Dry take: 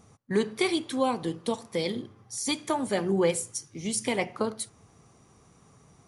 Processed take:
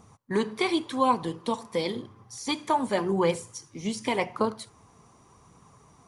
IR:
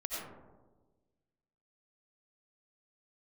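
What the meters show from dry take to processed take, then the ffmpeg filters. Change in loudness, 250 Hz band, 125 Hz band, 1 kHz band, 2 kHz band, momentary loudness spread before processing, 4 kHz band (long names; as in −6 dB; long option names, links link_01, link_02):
+1.0 dB, +0.5 dB, 0.0 dB, +6.0 dB, +0.5 dB, 9 LU, −0.5 dB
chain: -filter_complex "[0:a]aphaser=in_gain=1:out_gain=1:delay=4.9:decay=0.25:speed=0.9:type=triangular,acrossover=split=5700[link_01][link_02];[link_02]acompressor=threshold=-46dB:ratio=4:attack=1:release=60[link_03];[link_01][link_03]amix=inputs=2:normalize=0,equalizer=frequency=1000:width=3.7:gain=9.5"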